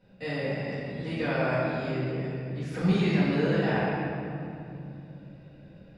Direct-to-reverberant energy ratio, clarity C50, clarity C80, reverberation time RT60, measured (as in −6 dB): −14.5 dB, −4.5 dB, −2.0 dB, 2.7 s